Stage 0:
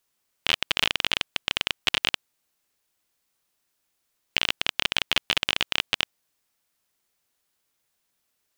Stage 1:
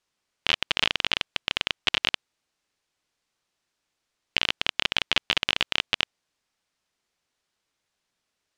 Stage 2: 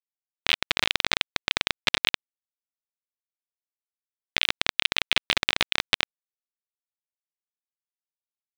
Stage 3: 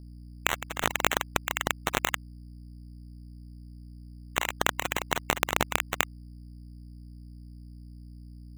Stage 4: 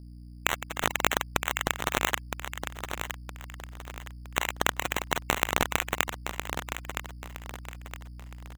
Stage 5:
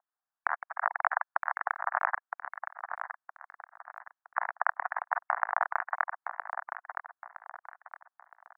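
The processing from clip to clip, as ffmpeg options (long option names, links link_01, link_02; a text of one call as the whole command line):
ffmpeg -i in.wav -af "lowpass=6300" out.wav
ffmpeg -i in.wav -af "aeval=exprs='sgn(val(0))*max(abs(val(0))-0.0316,0)':channel_layout=same,aeval=exprs='val(0)*sin(2*PI*510*n/s)':channel_layout=same,alimiter=level_in=12dB:limit=-1dB:release=50:level=0:latency=1,volume=-1dB" out.wav
ffmpeg -i in.wav -af "aeval=exprs='val(0)+0.00631*(sin(2*PI*60*n/s)+sin(2*PI*2*60*n/s)/2+sin(2*PI*3*60*n/s)/3+sin(2*PI*4*60*n/s)/4+sin(2*PI*5*60*n/s)/5)':channel_layout=same,afftfilt=real='re*lt(hypot(re,im),0.158)':imag='im*lt(hypot(re,im),0.158)':win_size=1024:overlap=0.75,acrusher=samples=9:mix=1:aa=0.000001" out.wav
ffmpeg -i in.wav -af "aecho=1:1:965|1930|2895|3860:0.398|0.139|0.0488|0.0171" out.wav
ffmpeg -i in.wav -af "asuperpass=centerf=1100:order=12:qfactor=1,volume=1.5dB" out.wav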